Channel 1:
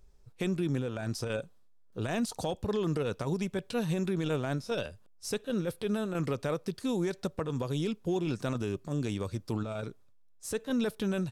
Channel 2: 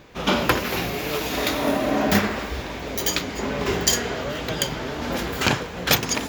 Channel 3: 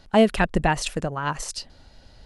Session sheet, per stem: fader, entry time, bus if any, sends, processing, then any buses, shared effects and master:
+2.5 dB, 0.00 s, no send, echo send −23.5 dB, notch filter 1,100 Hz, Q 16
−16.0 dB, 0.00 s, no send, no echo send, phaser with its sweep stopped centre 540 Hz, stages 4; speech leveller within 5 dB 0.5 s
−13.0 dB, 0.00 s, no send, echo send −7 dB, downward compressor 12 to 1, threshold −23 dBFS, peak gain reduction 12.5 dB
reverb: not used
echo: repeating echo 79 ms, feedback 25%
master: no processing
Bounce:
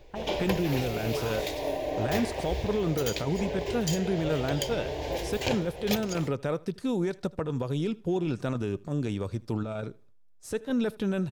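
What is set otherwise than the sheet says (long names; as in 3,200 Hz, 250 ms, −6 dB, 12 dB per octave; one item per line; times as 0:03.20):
stem 2 −16.0 dB → −4.5 dB
master: extra high-shelf EQ 3,600 Hz −8 dB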